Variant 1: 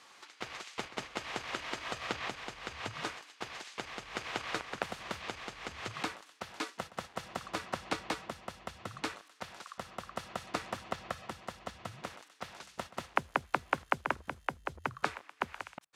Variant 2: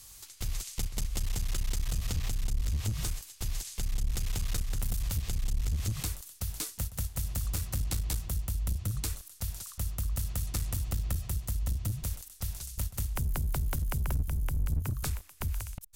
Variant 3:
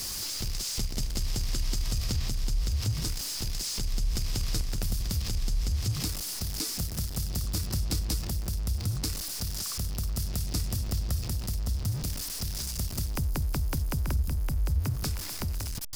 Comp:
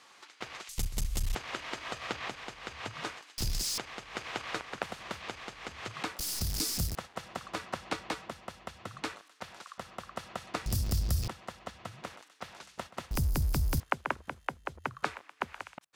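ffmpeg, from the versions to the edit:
-filter_complex "[2:a]asplit=4[s0][s1][s2][s3];[0:a]asplit=6[s4][s5][s6][s7][s8][s9];[s4]atrim=end=0.692[s10];[1:a]atrim=start=0.688:end=1.352[s11];[s5]atrim=start=1.348:end=3.382[s12];[s0]atrim=start=3.378:end=3.782[s13];[s6]atrim=start=3.778:end=6.192[s14];[s1]atrim=start=6.188:end=6.952[s15];[s7]atrim=start=6.948:end=10.662[s16];[s2]atrim=start=10.658:end=11.282[s17];[s8]atrim=start=11.278:end=13.112[s18];[s3]atrim=start=13.108:end=13.802[s19];[s9]atrim=start=13.798[s20];[s10][s11]acrossfade=d=0.004:c1=hsin:c2=hsin[s21];[s21][s12]acrossfade=d=0.004:c1=hsin:c2=hsin[s22];[s22][s13]acrossfade=d=0.004:c1=hsin:c2=hsin[s23];[s23][s14]acrossfade=d=0.004:c1=hsin:c2=hsin[s24];[s24][s15]acrossfade=d=0.004:c1=hsin:c2=hsin[s25];[s25][s16]acrossfade=d=0.004:c1=hsin:c2=hsin[s26];[s26][s17]acrossfade=d=0.004:c1=hsin:c2=hsin[s27];[s27][s18]acrossfade=d=0.004:c1=hsin:c2=hsin[s28];[s28][s19]acrossfade=d=0.004:c1=hsin:c2=hsin[s29];[s29][s20]acrossfade=d=0.004:c1=hsin:c2=hsin"

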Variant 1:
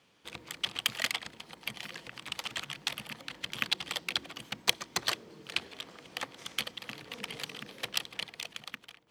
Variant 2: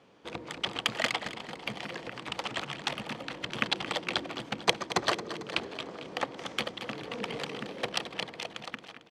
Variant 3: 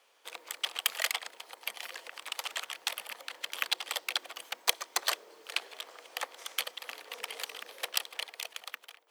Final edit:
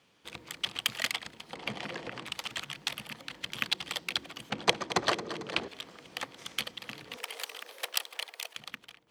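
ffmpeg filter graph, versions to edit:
-filter_complex "[1:a]asplit=2[s0][s1];[0:a]asplit=4[s2][s3][s4][s5];[s2]atrim=end=1.532[s6];[s0]atrim=start=1.528:end=2.262[s7];[s3]atrim=start=2.258:end=4.502[s8];[s1]atrim=start=4.498:end=5.682[s9];[s4]atrim=start=5.678:end=7.172[s10];[2:a]atrim=start=7.168:end=8.562[s11];[s5]atrim=start=8.558[s12];[s6][s7]acrossfade=d=0.004:c1=hsin:c2=hsin[s13];[s13][s8]acrossfade=d=0.004:c1=hsin:c2=hsin[s14];[s14][s9]acrossfade=d=0.004:c1=hsin:c2=hsin[s15];[s15][s10]acrossfade=d=0.004:c1=hsin:c2=hsin[s16];[s16][s11]acrossfade=d=0.004:c1=hsin:c2=hsin[s17];[s17][s12]acrossfade=d=0.004:c1=hsin:c2=hsin"

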